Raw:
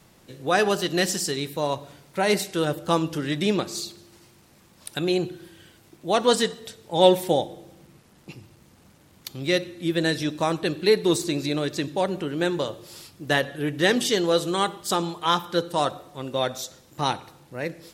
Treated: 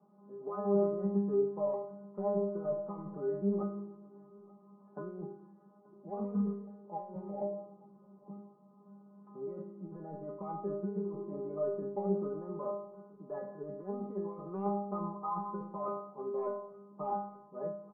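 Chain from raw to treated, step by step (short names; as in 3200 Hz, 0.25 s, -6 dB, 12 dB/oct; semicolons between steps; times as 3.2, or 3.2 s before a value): Chebyshev band-pass 150–1200 Hz, order 5; negative-ratio compressor -28 dBFS, ratio -1; metallic resonator 200 Hz, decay 0.59 s, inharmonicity 0.002; echo 0.881 s -23.5 dB; gain +9 dB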